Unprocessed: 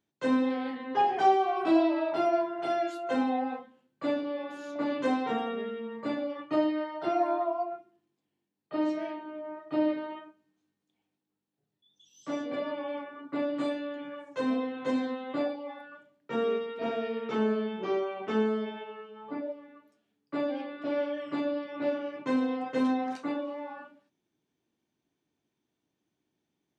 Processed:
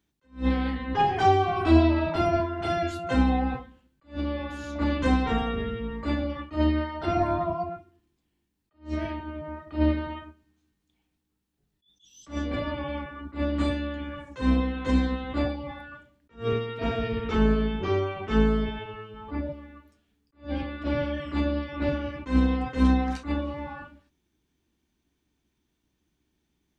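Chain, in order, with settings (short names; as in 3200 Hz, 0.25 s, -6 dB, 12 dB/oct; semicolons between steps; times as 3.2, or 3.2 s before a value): octaver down 2 oct, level -1 dB; bell 590 Hz -6.5 dB 1.3 oct; attack slew limiter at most 220 dB/s; gain +6.5 dB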